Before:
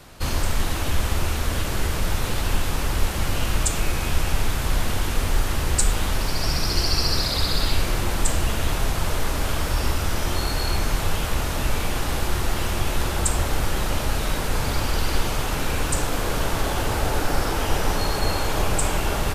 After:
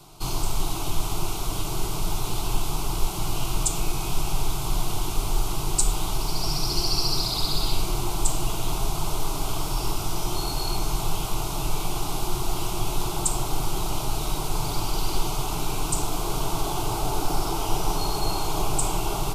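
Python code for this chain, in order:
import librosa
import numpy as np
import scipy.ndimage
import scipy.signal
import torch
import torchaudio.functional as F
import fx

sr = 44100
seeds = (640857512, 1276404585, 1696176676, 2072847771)

y = fx.fixed_phaser(x, sr, hz=350.0, stages=8)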